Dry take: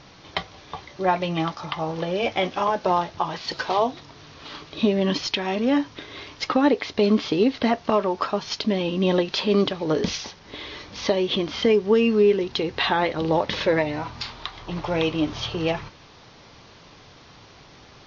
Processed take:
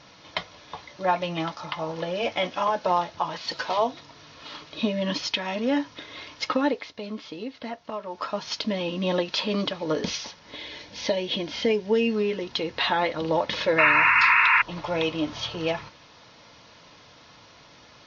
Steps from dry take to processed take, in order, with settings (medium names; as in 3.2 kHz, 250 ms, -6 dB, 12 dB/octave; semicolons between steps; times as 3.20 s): 10.56–12.16 s: peaking EQ 1.2 kHz -14 dB 0.25 oct; 13.78–14.62 s: painted sound noise 900–2800 Hz -17 dBFS; bass shelf 250 Hz -8.5 dB; comb of notches 390 Hz; 6.54–8.43 s: dip -10.5 dB, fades 0.40 s